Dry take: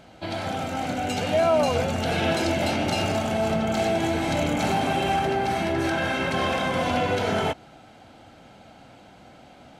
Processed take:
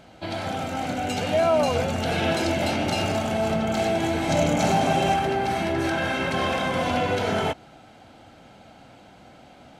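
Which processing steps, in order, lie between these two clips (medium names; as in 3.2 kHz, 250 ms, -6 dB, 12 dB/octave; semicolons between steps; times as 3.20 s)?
4.29–5.14 s: fifteen-band graphic EQ 160 Hz +5 dB, 630 Hz +5 dB, 6.3 kHz +6 dB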